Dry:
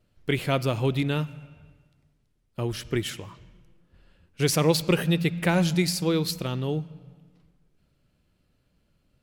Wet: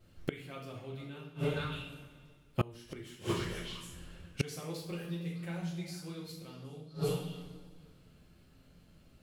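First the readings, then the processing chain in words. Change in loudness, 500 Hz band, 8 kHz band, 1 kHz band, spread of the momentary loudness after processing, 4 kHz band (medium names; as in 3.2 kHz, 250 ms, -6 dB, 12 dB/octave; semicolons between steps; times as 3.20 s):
-14.0 dB, -12.0 dB, -15.5 dB, -12.0 dB, 15 LU, -13.0 dB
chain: repeats whose band climbs or falls 153 ms, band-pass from 190 Hz, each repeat 1.4 oct, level -6 dB; two-slope reverb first 0.57 s, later 2 s, from -18 dB, DRR -4.5 dB; inverted gate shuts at -19 dBFS, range -27 dB; trim +1.5 dB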